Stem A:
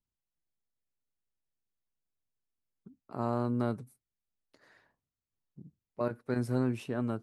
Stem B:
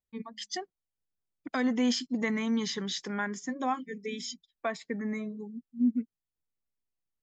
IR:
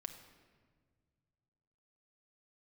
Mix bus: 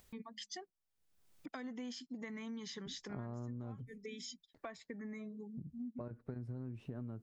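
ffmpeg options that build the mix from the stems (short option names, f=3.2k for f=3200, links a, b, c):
-filter_complex "[0:a]acompressor=threshold=-32dB:ratio=6,aemphasis=mode=reproduction:type=riaa,agate=range=-27dB:threshold=-60dB:ratio=16:detection=peak,volume=-3.5dB,asplit=2[a][b];[1:a]acompressor=mode=upward:threshold=-31dB:ratio=2.5,volume=-10dB[c];[b]apad=whole_len=318692[d];[c][d]sidechaincompress=threshold=-41dB:ratio=4:attack=32:release=336[e];[a][e]amix=inputs=2:normalize=0,acompressor=threshold=-42dB:ratio=6"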